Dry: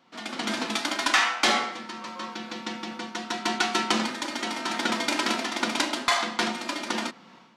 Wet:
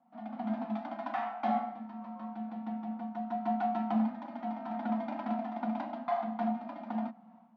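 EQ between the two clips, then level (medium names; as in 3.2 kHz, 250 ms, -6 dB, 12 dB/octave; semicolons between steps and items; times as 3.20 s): two resonant band-passes 400 Hz, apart 1.7 oct; distance through air 210 m; +2.5 dB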